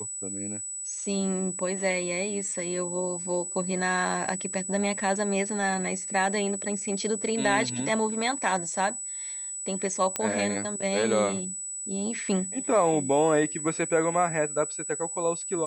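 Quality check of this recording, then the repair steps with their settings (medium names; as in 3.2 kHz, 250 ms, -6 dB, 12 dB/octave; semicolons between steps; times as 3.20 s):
whine 7.9 kHz -33 dBFS
10.16 s: pop -12 dBFS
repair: de-click; band-stop 7.9 kHz, Q 30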